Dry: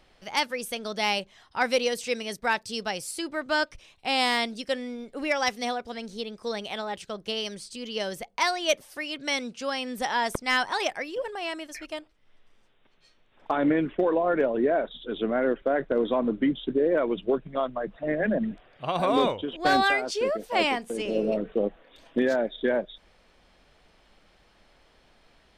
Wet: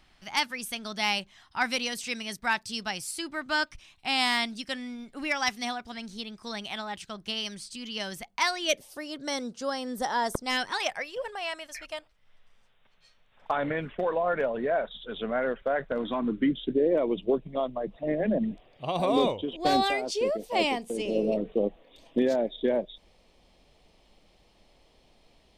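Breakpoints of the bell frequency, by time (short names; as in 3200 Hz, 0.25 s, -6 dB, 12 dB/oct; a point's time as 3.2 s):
bell -13.5 dB 0.7 oct
8.5 s 490 Hz
9.03 s 2500 Hz
10.4 s 2500 Hz
10.9 s 320 Hz
15.87 s 320 Hz
16.9 s 1500 Hz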